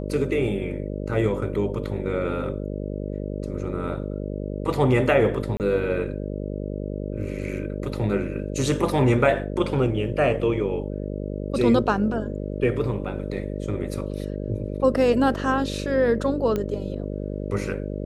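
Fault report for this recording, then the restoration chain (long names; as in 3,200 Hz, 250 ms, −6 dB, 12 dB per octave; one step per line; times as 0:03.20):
mains buzz 50 Hz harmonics 12 −30 dBFS
0:05.57–0:05.60: drop-out 28 ms
0:16.56: click −14 dBFS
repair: click removal
hum removal 50 Hz, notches 12
repair the gap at 0:05.57, 28 ms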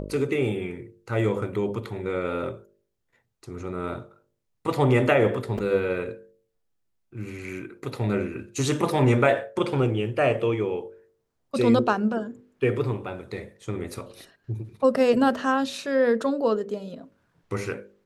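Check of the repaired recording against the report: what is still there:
none of them is left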